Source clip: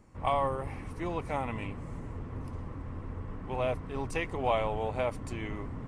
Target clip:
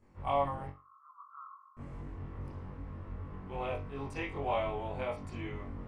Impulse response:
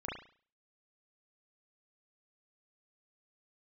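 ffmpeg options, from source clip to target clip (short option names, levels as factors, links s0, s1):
-filter_complex "[0:a]asettb=1/sr,asplit=3[s0][s1][s2];[s0]atrim=end=0.674[s3];[s1]atrim=start=0.67:end=1.77,asetpts=PTS-STARTPTS,afade=t=in:d=0.004:c=qsin,afade=t=out:st=1.096:d=0.004:c=qsin,asuperpass=centerf=1200:order=8:qfactor=4[s4];[s2]atrim=start=1.766[s5];[s3][s4]acrossfade=d=0.004:c1=hsin:c2=qsin[s6];[s6][s5]acrossfade=d=0.004:c1=qsin:c2=hsin[s7];[1:a]atrim=start_sample=2205,asetrate=70560,aresample=44100[s8];[s7][s8]afir=irnorm=-1:irlink=0,volume=0.75"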